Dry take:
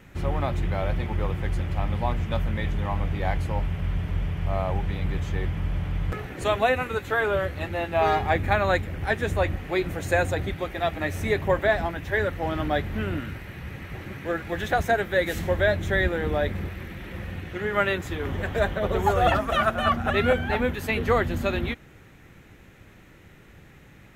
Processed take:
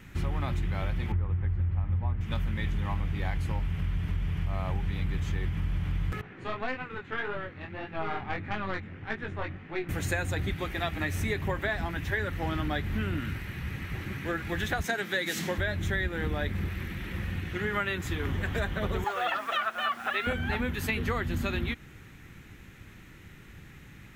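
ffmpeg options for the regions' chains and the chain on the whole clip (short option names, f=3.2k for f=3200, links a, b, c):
-filter_complex "[0:a]asettb=1/sr,asplit=3[a][b][c];[a]atrim=end=1.124[d];[b]atrim=start=1.12:end=2.21,asetpts=PTS-STARTPTS,afade=t=in:d=0.004:c=qsin,afade=t=out:st=1.086:d=0.004:c=qsin,lowpass=1.7k,equalizer=f=85:w=3.8:g=13[e];[c]atrim=start=2.206[f];[d][e]acrossfade=d=0.004:c1=hsin:c2=qsin[g];[g][f]acrossfade=d=0.004:c1=qsin:c2=hsin,asettb=1/sr,asplit=3[h][i][j];[h]atrim=end=6.214[k];[i]atrim=start=6.21:end=9.89,asetpts=PTS-STARTPTS,afade=t=in:d=0.004:c=qsin,afade=t=out:st=3.676:d=0.004:c=qsin,highpass=130,lowpass=2.4k,aeval=exprs='(tanh(5.62*val(0)+0.75)-tanh(0.75))/5.62':c=same,flanger=delay=18.5:depth=4.7:speed=1.7[l];[j]atrim=start=9.886[m];[k][l]acrossfade=d=0.004:c1=hsin:c2=qsin[n];[n][m]acrossfade=d=0.004:c1=qsin:c2=hsin,asettb=1/sr,asplit=3[o][p][q];[o]atrim=end=14.844[r];[p]atrim=start=14.84:end=15.58,asetpts=PTS-STARTPTS,afade=t=in:d=0.004:c=qsin,afade=t=out:st=0.736:d=0.004:c=qsin,highpass=f=160:w=0.5412,highpass=f=160:w=1.3066,equalizer=f=5.4k:w=0.8:g=6.5[s];[q]atrim=start=15.576[t];[r][s]acrossfade=d=0.004:c1=hsin:c2=qsin[u];[u][t]acrossfade=d=0.004:c1=qsin:c2=hsin,asettb=1/sr,asplit=3[v][w][x];[v]atrim=end=19.044[y];[w]atrim=start=19.04:end=20.27,asetpts=PTS-STARTPTS,afade=t=in:d=0.004:c=qsin,afade=t=out:st=1.226:d=0.004:c=qsin,highpass=570,lowpass=4.4k,acrusher=bits=7:mix=0:aa=0.5[z];[x]atrim=start=20.266[aa];[y][z]acrossfade=d=0.004:c1=hsin:c2=qsin[ab];[ab][aa]acrossfade=d=0.004:c1=qsin:c2=hsin,equalizer=f=590:t=o:w=1.2:g=-9.5,acompressor=threshold=-28dB:ratio=6,volume=2dB"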